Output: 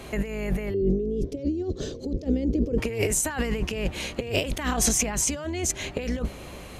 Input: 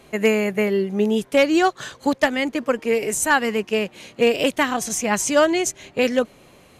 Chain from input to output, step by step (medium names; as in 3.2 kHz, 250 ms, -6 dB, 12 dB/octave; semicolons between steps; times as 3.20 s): octave divider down 2 oct, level +1 dB; compressor with a negative ratio -28 dBFS, ratio -1; 0.74–2.78 s: FFT filter 150 Hz 0 dB, 430 Hz +9 dB, 920 Hz -21 dB, 1.6 kHz -24 dB, 5.5 kHz -7 dB, 9.1 kHz -21 dB